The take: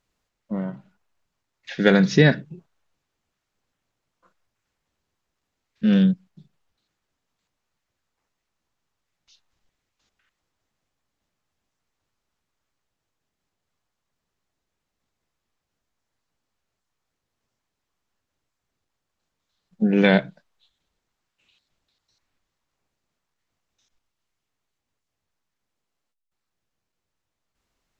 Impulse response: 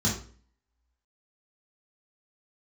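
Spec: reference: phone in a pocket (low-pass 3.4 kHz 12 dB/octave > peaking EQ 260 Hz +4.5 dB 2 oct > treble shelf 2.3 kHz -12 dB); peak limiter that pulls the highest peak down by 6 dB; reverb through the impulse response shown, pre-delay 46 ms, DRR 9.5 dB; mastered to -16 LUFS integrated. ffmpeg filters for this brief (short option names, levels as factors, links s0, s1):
-filter_complex "[0:a]alimiter=limit=0.422:level=0:latency=1,asplit=2[s0][s1];[1:a]atrim=start_sample=2205,adelay=46[s2];[s1][s2]afir=irnorm=-1:irlink=0,volume=0.112[s3];[s0][s3]amix=inputs=2:normalize=0,lowpass=3400,equalizer=f=260:t=o:w=2:g=4.5,highshelf=f=2300:g=-12,volume=0.794"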